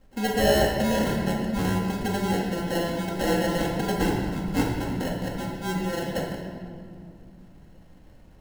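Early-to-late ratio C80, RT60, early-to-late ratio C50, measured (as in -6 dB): 3.5 dB, 2.3 s, 1.5 dB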